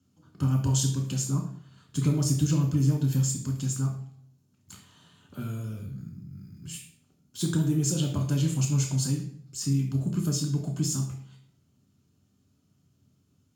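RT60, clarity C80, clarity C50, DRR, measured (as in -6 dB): 0.60 s, 10.5 dB, 7.0 dB, 1.0 dB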